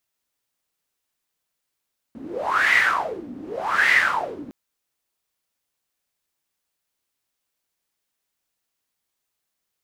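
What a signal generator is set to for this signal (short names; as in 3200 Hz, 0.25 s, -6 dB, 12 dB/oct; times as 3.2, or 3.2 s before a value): wind-like swept noise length 2.36 s, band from 260 Hz, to 2000 Hz, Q 9.5, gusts 2, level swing 19 dB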